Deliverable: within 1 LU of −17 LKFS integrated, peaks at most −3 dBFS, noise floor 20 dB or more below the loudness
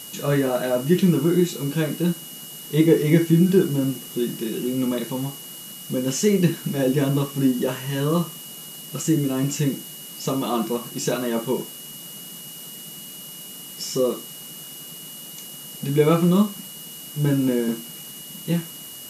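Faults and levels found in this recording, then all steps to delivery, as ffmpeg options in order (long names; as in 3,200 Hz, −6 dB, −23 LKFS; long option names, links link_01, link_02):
interfering tone 2,900 Hz; level of the tone −42 dBFS; background noise floor −39 dBFS; target noise floor −43 dBFS; integrated loudness −22.5 LKFS; sample peak −4.5 dBFS; target loudness −17.0 LKFS
→ -af "bandreject=frequency=2900:width=30"
-af "afftdn=noise_reduction=6:noise_floor=-39"
-af "volume=5.5dB,alimiter=limit=-3dB:level=0:latency=1"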